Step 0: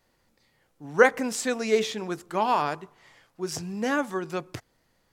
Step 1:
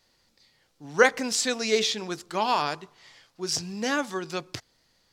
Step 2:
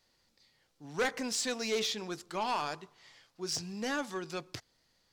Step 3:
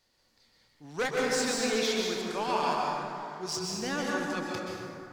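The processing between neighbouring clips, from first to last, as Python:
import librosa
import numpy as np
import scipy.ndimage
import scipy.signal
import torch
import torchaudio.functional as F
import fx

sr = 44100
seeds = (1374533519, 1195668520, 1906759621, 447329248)

y1 = fx.peak_eq(x, sr, hz=4600.0, db=12.0, octaves=1.5)
y1 = y1 * 10.0 ** (-2.0 / 20.0)
y2 = 10.0 ** (-20.0 / 20.0) * np.tanh(y1 / 10.0 ** (-20.0 / 20.0))
y2 = y2 * 10.0 ** (-5.5 / 20.0)
y3 = fx.rev_plate(y2, sr, seeds[0], rt60_s=2.8, hf_ratio=0.4, predelay_ms=115, drr_db=-3.5)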